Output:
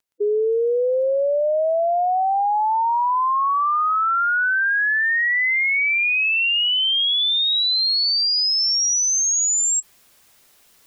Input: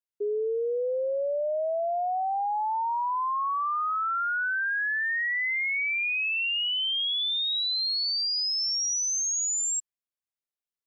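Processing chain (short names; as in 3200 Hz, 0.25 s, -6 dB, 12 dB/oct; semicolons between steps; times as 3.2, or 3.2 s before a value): spectral gate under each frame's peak -15 dB strong; reverse; upward compressor, threshold -40 dBFS; reverse; crackle 14/s -57 dBFS; gain +8.5 dB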